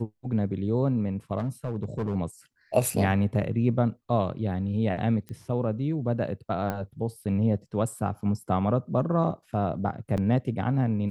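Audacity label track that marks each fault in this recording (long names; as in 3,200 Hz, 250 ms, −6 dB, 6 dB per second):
1.380000	2.150000	clipping −24.5 dBFS
5.290000	5.290000	click −26 dBFS
6.700000	6.700000	click −17 dBFS
10.170000	10.180000	drop-out 8.2 ms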